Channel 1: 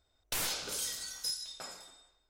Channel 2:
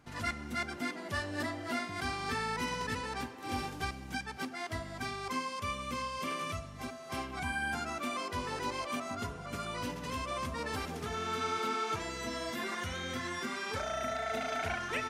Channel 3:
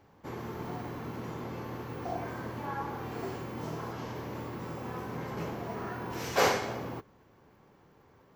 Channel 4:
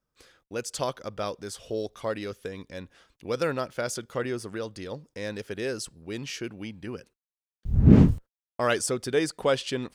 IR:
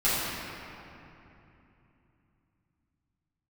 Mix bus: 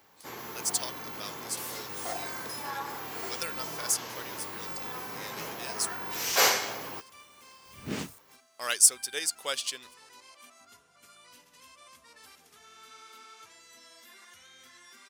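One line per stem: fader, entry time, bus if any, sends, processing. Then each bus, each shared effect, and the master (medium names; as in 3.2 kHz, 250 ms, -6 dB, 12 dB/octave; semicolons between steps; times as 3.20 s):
-18.0 dB, 1.25 s, no send, none
-19.0 dB, 1.50 s, no send, none
+0.5 dB, 0.00 s, no send, none
-5.5 dB, 0.00 s, no send, tilt EQ +2.5 dB/octave; upward expansion 1.5:1, over -34 dBFS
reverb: none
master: tilt EQ +4 dB/octave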